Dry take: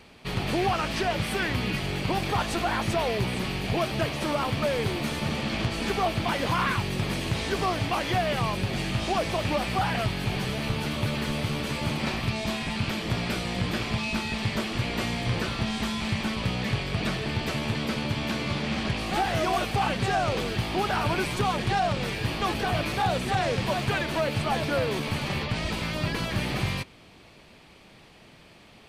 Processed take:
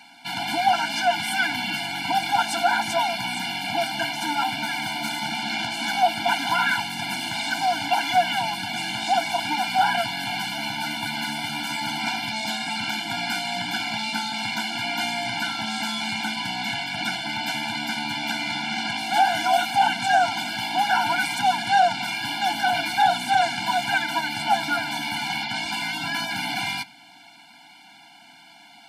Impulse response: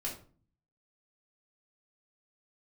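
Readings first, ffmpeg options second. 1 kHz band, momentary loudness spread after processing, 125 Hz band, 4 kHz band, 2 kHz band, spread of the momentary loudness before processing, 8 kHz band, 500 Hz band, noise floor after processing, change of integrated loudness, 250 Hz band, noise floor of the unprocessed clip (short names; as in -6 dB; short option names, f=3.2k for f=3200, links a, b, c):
+7.5 dB, 6 LU, -12.5 dB, +6.5 dB, +6.0 dB, 3 LU, +5.5 dB, -2.0 dB, -49 dBFS, +3.5 dB, -4.0 dB, -52 dBFS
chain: -filter_complex "[0:a]highpass=460,asplit=2[a][b];[1:a]atrim=start_sample=2205,asetrate=31311,aresample=44100[c];[b][c]afir=irnorm=-1:irlink=0,volume=-22dB[d];[a][d]amix=inputs=2:normalize=0,afftfilt=real='re*eq(mod(floor(b*sr/1024/340),2),0)':imag='im*eq(mod(floor(b*sr/1024/340),2),0)':win_size=1024:overlap=0.75,volume=8.5dB"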